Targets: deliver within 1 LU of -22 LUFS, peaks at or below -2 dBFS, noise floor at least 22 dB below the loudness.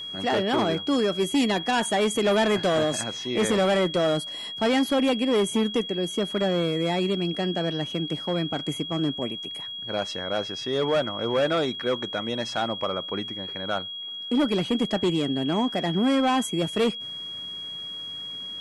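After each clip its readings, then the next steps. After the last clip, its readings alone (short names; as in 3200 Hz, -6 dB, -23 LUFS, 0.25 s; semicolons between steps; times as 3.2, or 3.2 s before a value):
ticks 30/s; steady tone 3300 Hz; tone level -33 dBFS; loudness -25.5 LUFS; peak -15.0 dBFS; loudness target -22.0 LUFS
-> de-click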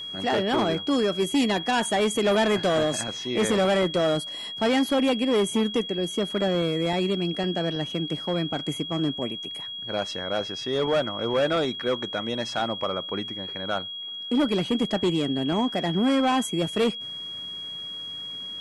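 ticks 0.054/s; steady tone 3300 Hz; tone level -33 dBFS
-> notch 3300 Hz, Q 30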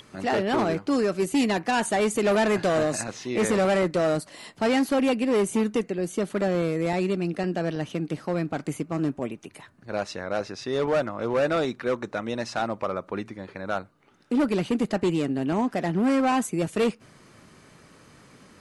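steady tone none; loudness -26.0 LUFS; peak -14.0 dBFS; loudness target -22.0 LUFS
-> gain +4 dB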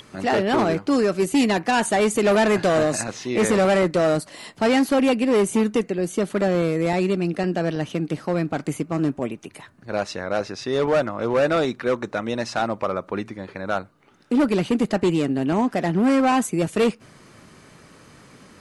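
loudness -22.0 LUFS; peak -10.0 dBFS; noise floor -51 dBFS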